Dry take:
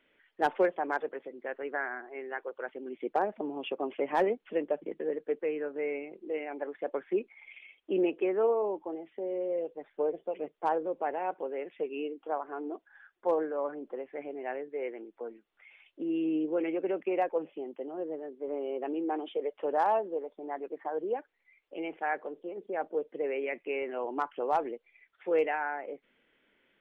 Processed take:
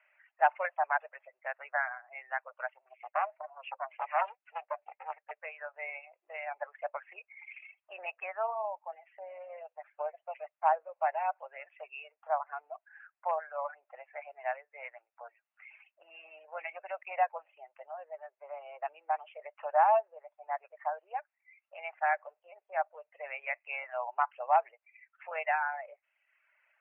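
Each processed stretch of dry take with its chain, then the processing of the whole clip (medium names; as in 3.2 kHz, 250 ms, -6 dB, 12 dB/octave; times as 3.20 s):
2.73–5.31 s: peaking EQ 190 Hz -13.5 dB 0.5 oct + flange 1.2 Hz, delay 4.9 ms, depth 5.4 ms, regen +52% + loudspeaker Doppler distortion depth 0.65 ms
whole clip: reverb removal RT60 0.87 s; Chebyshev band-pass 610–2700 Hz, order 5; trim +4 dB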